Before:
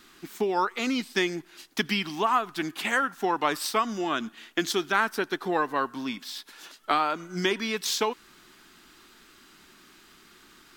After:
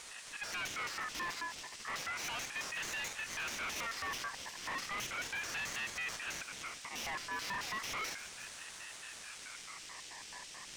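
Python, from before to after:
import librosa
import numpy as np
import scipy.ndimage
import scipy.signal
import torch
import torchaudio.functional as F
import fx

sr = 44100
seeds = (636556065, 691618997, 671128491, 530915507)

p1 = fx.spec_steps(x, sr, hold_ms=50)
p2 = fx.hum_notches(p1, sr, base_hz=50, count=7)
p3 = fx.over_compress(p2, sr, threshold_db=-35.0, ratio=-1.0)
p4 = p2 + F.gain(torch.from_numpy(p3), 1.5).numpy()
p5 = fx.auto_swell(p4, sr, attack_ms=183.0)
p6 = fx.sample_hold(p5, sr, seeds[0], rate_hz=3100.0, jitter_pct=20)
p7 = fx.filter_lfo_bandpass(p6, sr, shape='square', hz=4.6, low_hz=430.0, high_hz=4000.0, q=2.4)
p8 = fx.dmg_noise_band(p7, sr, seeds[1], low_hz=3100.0, high_hz=7500.0, level_db=-56.0)
p9 = fx.tube_stage(p8, sr, drive_db=43.0, bias=0.4)
p10 = p9 + fx.echo_wet_highpass(p9, sr, ms=355, feedback_pct=63, hz=1800.0, wet_db=-12.0, dry=0)
p11 = fx.ring_lfo(p10, sr, carrier_hz=1800.0, swing_pct=25, hz=0.34)
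y = F.gain(torch.from_numpy(p11), 8.5).numpy()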